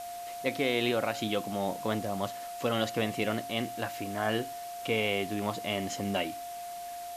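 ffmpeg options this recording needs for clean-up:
-af "adeclick=t=4,bandreject=f=700:w=30,afwtdn=0.004"

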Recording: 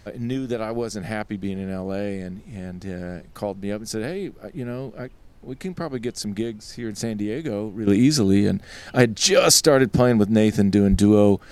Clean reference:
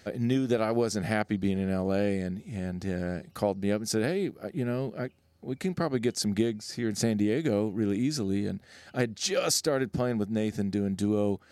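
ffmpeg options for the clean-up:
-filter_complex "[0:a]asplit=3[s0][s1][s2];[s0]afade=t=out:st=10.9:d=0.02[s3];[s1]highpass=f=140:w=0.5412,highpass=f=140:w=1.3066,afade=t=in:st=10.9:d=0.02,afade=t=out:st=11.02:d=0.02[s4];[s2]afade=t=in:st=11.02:d=0.02[s5];[s3][s4][s5]amix=inputs=3:normalize=0,agate=range=0.0891:threshold=0.0178,asetnsamples=n=441:p=0,asendcmd='7.87 volume volume -11.5dB',volume=1"

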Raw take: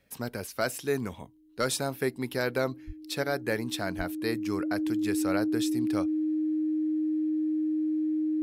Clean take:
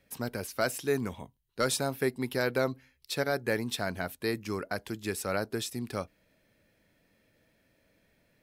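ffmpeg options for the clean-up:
-filter_complex "[0:a]bandreject=f=310:w=30,asplit=3[s0][s1][s2];[s0]afade=t=out:st=2.86:d=0.02[s3];[s1]highpass=f=140:w=0.5412,highpass=f=140:w=1.3066,afade=t=in:st=2.86:d=0.02,afade=t=out:st=2.98:d=0.02[s4];[s2]afade=t=in:st=2.98:d=0.02[s5];[s3][s4][s5]amix=inputs=3:normalize=0,asplit=3[s6][s7][s8];[s6]afade=t=out:st=3.97:d=0.02[s9];[s7]highpass=f=140:w=0.5412,highpass=f=140:w=1.3066,afade=t=in:st=3.97:d=0.02,afade=t=out:st=4.09:d=0.02[s10];[s8]afade=t=in:st=4.09:d=0.02[s11];[s9][s10][s11]amix=inputs=3:normalize=0"

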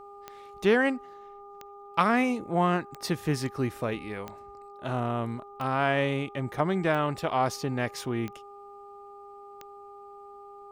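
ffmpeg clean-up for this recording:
-af "adeclick=t=4,bandreject=f=403.8:t=h:w=4,bandreject=f=807.6:t=h:w=4,bandreject=f=1211.4:t=h:w=4"

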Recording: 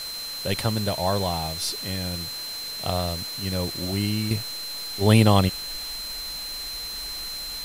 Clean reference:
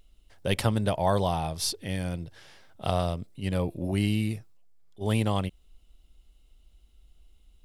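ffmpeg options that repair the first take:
-af "bandreject=f=4100:w=30,afwtdn=0.013,asetnsamples=n=441:p=0,asendcmd='4.31 volume volume -9.5dB',volume=1"

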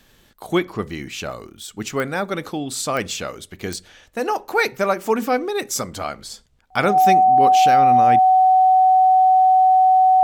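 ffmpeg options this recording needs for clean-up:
-af "adeclick=t=4,bandreject=f=750:w=30"

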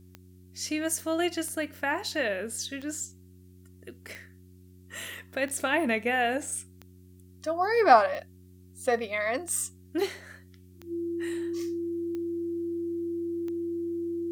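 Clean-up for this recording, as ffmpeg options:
-af "adeclick=t=4,bandreject=f=91.5:t=h:w=4,bandreject=f=183:t=h:w=4,bandreject=f=274.5:t=h:w=4,bandreject=f=366:t=h:w=4,bandreject=f=340:w=30,agate=range=0.0891:threshold=0.00562"

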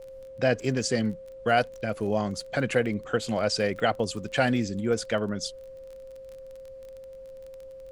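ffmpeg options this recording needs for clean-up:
-af "adeclick=t=4,bandreject=f=530:w=30,agate=range=0.0891:threshold=0.0158"

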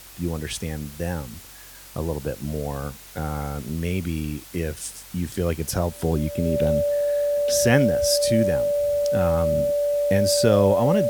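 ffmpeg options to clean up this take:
-af "bandreject=f=46.4:t=h:w=4,bandreject=f=92.8:t=h:w=4,bandreject=f=139.2:t=h:w=4,bandreject=f=580:w=30,afwtdn=0.0063"

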